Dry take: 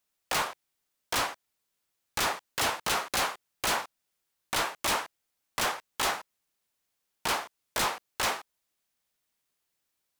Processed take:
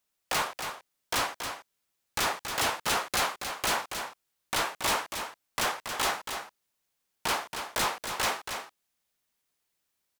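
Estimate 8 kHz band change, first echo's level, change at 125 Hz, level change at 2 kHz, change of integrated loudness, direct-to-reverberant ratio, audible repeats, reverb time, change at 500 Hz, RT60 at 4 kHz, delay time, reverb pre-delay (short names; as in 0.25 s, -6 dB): +0.5 dB, -7.5 dB, +1.0 dB, +0.5 dB, 0.0 dB, none, 1, none, +0.5 dB, none, 0.277 s, none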